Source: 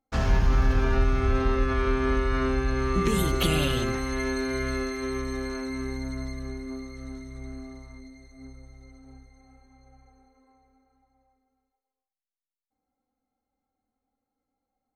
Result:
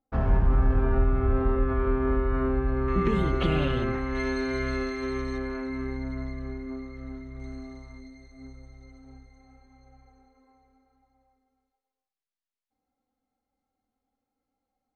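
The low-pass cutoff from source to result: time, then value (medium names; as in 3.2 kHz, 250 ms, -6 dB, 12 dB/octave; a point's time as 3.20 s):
1.2 kHz
from 2.88 s 2.1 kHz
from 4.15 s 4.2 kHz
from 5.38 s 2.5 kHz
from 7.40 s 5.7 kHz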